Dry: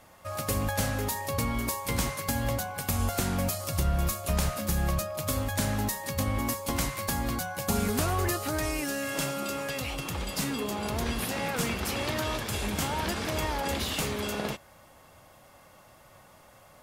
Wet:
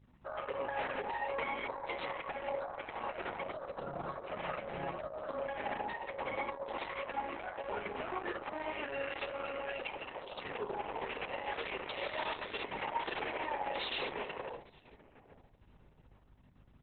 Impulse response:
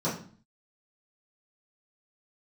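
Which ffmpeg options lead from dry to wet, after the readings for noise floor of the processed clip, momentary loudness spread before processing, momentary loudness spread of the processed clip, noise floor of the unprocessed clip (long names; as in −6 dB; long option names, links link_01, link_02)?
−63 dBFS, 3 LU, 5 LU, −56 dBFS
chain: -filter_complex "[0:a]highpass=480,afwtdn=0.0126,aecho=1:1:2.2:0.35,adynamicequalizer=threshold=0.00178:dfrequency=1400:dqfactor=7.2:tfrequency=1400:tqfactor=7.2:attack=5:release=100:ratio=0.375:range=3.5:mode=cutabove:tftype=bell,alimiter=level_in=3.5dB:limit=-24dB:level=0:latency=1:release=94,volume=-3.5dB,aeval=exprs='val(0)+0.00126*(sin(2*PI*50*n/s)+sin(2*PI*2*50*n/s)/2+sin(2*PI*3*50*n/s)/3+sin(2*PI*4*50*n/s)/4+sin(2*PI*5*50*n/s)/5)':channel_layout=same,flanger=delay=0.5:depth=5.7:regen=-65:speed=0.24:shape=triangular,asplit=2[link_01][link_02];[link_02]adelay=859,lowpass=frequency=1600:poles=1,volume=-18.5dB,asplit=2[link_03][link_04];[link_04]adelay=859,lowpass=frequency=1600:poles=1,volume=0.2[link_05];[link_01][link_03][link_05]amix=inputs=3:normalize=0,asplit=2[link_06][link_07];[1:a]atrim=start_sample=2205,asetrate=34839,aresample=44100[link_08];[link_07][link_08]afir=irnorm=-1:irlink=0,volume=-20dB[link_09];[link_06][link_09]amix=inputs=2:normalize=0,volume=3.5dB" -ar 48000 -c:a libopus -b:a 6k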